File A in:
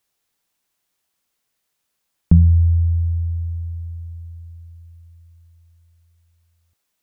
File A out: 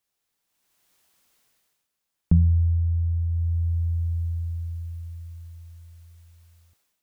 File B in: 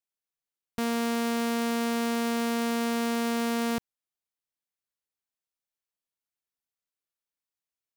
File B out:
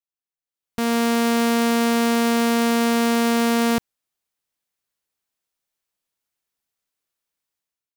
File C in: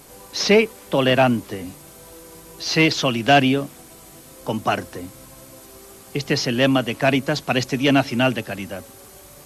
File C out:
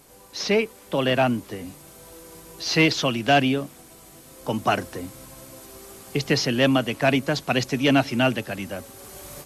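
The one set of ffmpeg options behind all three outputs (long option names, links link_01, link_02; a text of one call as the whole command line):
ffmpeg -i in.wav -af "dynaudnorm=framelen=470:gausssize=3:maxgain=16dB,volume=-7dB" out.wav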